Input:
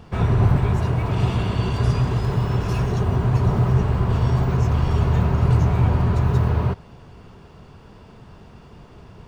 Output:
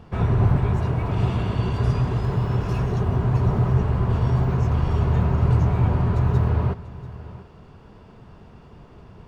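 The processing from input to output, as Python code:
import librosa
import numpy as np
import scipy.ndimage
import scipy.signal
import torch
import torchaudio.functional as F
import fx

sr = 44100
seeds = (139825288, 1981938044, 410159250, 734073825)

p1 = fx.high_shelf(x, sr, hz=3100.0, db=-7.0)
p2 = p1 + fx.echo_single(p1, sr, ms=688, db=-17.0, dry=0)
y = p2 * librosa.db_to_amplitude(-1.5)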